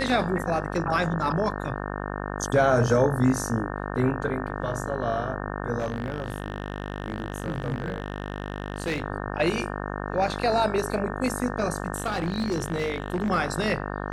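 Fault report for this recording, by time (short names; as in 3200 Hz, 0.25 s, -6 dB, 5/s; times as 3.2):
buzz 50 Hz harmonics 36 -32 dBFS
5.78–9.02 clipped -23 dBFS
11.96–13.3 clipped -22 dBFS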